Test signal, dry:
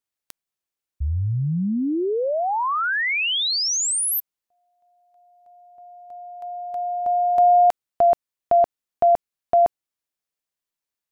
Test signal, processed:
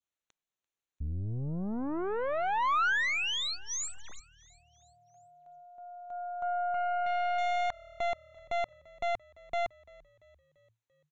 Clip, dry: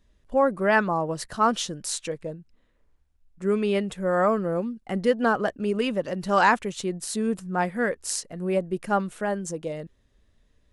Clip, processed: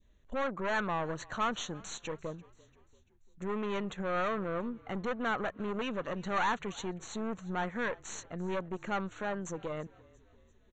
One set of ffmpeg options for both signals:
ffmpeg -i in.wav -filter_complex "[0:a]aeval=exprs='(tanh(20*val(0)+0.6)-tanh(0.6))/20':channel_layout=same,alimiter=level_in=5dB:limit=-24dB:level=0:latency=1:release=292,volume=-5dB,asplit=5[link_01][link_02][link_03][link_04][link_05];[link_02]adelay=341,afreqshift=-38,volume=-23dB[link_06];[link_03]adelay=682,afreqshift=-76,volume=-28dB[link_07];[link_04]adelay=1023,afreqshift=-114,volume=-33.1dB[link_08];[link_05]adelay=1364,afreqshift=-152,volume=-38.1dB[link_09];[link_01][link_06][link_07][link_08][link_09]amix=inputs=5:normalize=0,adynamicequalizer=threshold=0.00282:dfrequency=1300:dqfactor=0.91:tfrequency=1300:tqfactor=0.91:attack=5:release=100:ratio=0.375:range=4:mode=boostabove:tftype=bell,aresample=16000,aresample=44100,asuperstop=centerf=5000:order=8:qfactor=3.5" out.wav

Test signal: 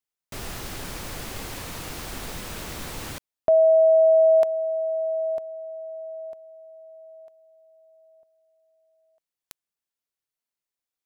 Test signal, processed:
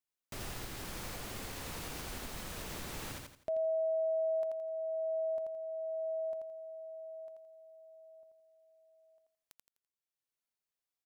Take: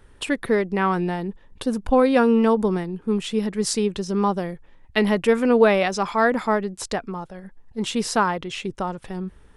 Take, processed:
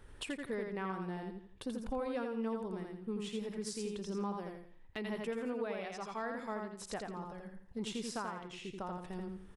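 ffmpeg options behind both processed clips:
ffmpeg -i in.wav -filter_complex "[0:a]asplit=2[link_01][link_02];[link_02]aecho=0:1:84|168|252|336:0.631|0.183|0.0531|0.0154[link_03];[link_01][link_03]amix=inputs=2:normalize=0,acompressor=threshold=-28dB:ratio=5:attack=0.11:release=978:knee=1:detection=rms,volume=-5dB" out.wav

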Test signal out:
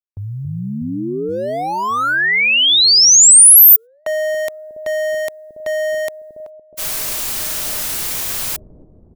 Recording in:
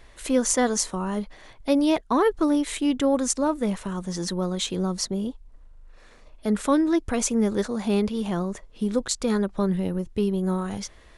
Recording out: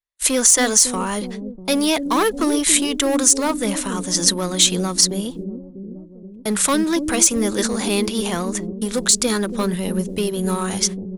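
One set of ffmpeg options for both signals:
ffmpeg -i in.wav -filter_complex "[0:a]agate=range=-52dB:threshold=-40dB:ratio=16:detection=peak,equalizer=frequency=870:width=0.43:gain=4.5,asplit=2[link_01][link_02];[link_02]volume=19.5dB,asoftclip=hard,volume=-19.5dB,volume=-4dB[link_03];[link_01][link_03]amix=inputs=2:normalize=0,crystalizer=i=8.5:c=0,acrossover=split=430|1200[link_04][link_05][link_06];[link_04]aecho=1:1:280|644|1117|1732|2532:0.631|0.398|0.251|0.158|0.1[link_07];[link_05]asoftclip=type=tanh:threshold=-16.5dB[link_08];[link_07][link_08][link_06]amix=inputs=3:normalize=0,alimiter=level_in=-3.5dB:limit=-1dB:release=50:level=0:latency=1,volume=-1dB" out.wav

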